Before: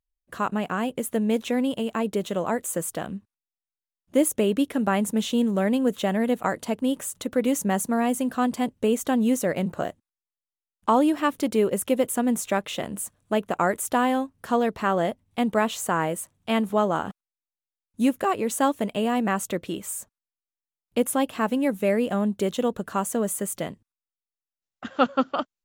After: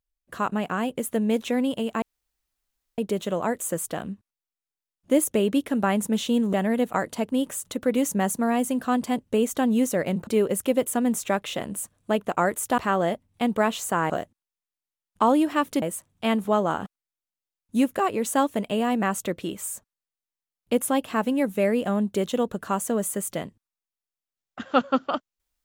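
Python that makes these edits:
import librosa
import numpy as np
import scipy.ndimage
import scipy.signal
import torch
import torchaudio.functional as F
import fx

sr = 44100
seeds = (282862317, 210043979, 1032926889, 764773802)

y = fx.edit(x, sr, fx.insert_room_tone(at_s=2.02, length_s=0.96),
    fx.cut(start_s=5.57, length_s=0.46),
    fx.move(start_s=9.77, length_s=1.72, to_s=16.07),
    fx.cut(start_s=14.0, length_s=0.75), tone=tone)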